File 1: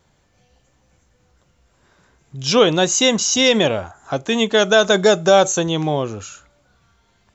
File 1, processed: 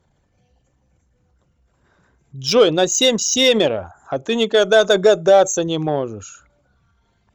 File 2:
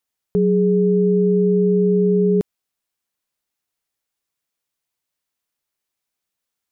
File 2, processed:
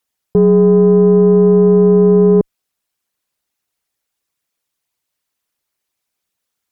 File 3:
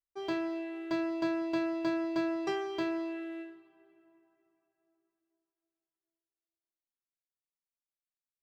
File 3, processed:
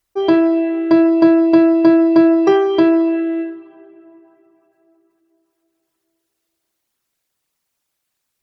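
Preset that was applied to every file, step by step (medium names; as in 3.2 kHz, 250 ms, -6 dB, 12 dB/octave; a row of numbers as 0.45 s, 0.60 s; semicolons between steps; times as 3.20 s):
resonances exaggerated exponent 1.5; Chebyshev shaper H 7 -28 dB, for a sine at -2.5 dBFS; peak normalisation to -1.5 dBFS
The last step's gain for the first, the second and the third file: +1.0 dB, +8.0 dB, +24.0 dB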